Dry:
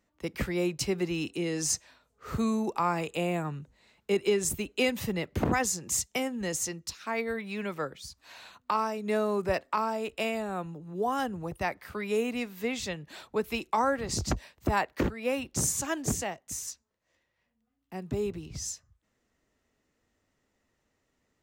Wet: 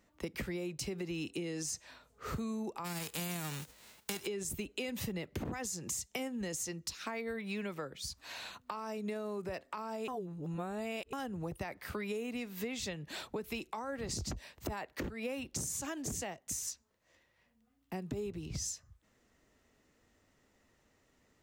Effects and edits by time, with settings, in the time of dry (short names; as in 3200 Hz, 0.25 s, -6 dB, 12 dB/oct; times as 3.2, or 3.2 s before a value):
2.84–4.25 spectral whitening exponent 0.3
10.08–11.13 reverse
whole clip: limiter -23.5 dBFS; compressor 6:1, threshold -41 dBFS; dynamic EQ 1100 Hz, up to -3 dB, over -58 dBFS, Q 0.81; gain +5 dB